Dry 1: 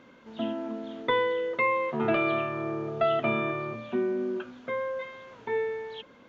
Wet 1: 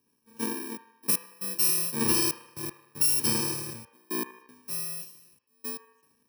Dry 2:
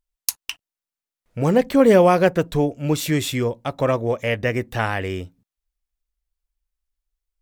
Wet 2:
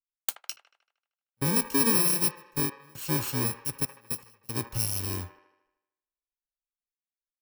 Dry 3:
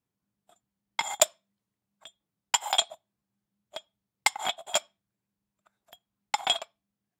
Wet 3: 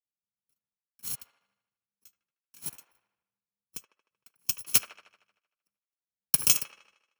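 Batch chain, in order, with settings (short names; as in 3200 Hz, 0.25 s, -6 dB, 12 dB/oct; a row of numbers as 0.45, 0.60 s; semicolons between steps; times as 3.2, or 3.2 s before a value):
FFT order left unsorted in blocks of 64 samples; compressor 3:1, threshold -21 dBFS; step gate "xxxxxx..x..x" 117 bpm -24 dB; band-limited delay 77 ms, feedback 73%, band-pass 1100 Hz, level -8.5 dB; three-band expander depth 70%; match loudness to -27 LUFS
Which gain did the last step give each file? -0.5, -4.0, -0.5 dB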